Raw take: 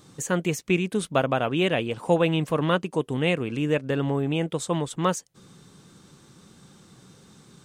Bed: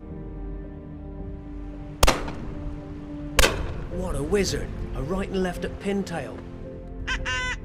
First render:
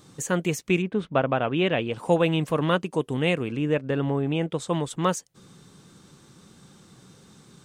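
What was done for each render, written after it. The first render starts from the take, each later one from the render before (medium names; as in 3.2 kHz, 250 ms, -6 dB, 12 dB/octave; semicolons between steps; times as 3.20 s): 0.81–1.92 s: low-pass 1.9 kHz -> 4.8 kHz; 3.51–4.67 s: treble shelf 4 kHz -> 7.8 kHz -11 dB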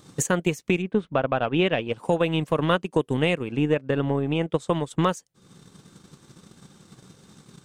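transient shaper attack +10 dB, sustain -7 dB; peak limiter -11 dBFS, peak gain reduction 11.5 dB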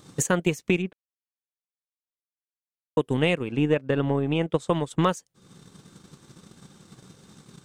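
0.93–2.97 s: mute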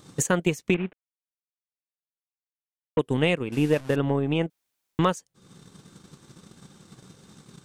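0.74–2.99 s: CVSD coder 16 kbps; 3.52–3.96 s: one-bit delta coder 64 kbps, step -36.5 dBFS; 4.50–4.99 s: room tone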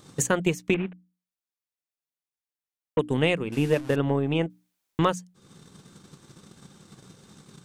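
hum notches 60/120/180/240/300 Hz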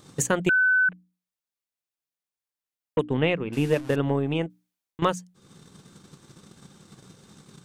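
0.49–0.89 s: bleep 1.51 kHz -17 dBFS; 3.03–3.53 s: low-pass 3.2 kHz; 4.22–5.02 s: fade out, to -15 dB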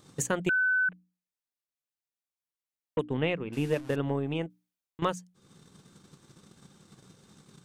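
trim -5.5 dB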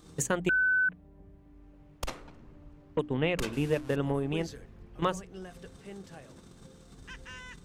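add bed -18.5 dB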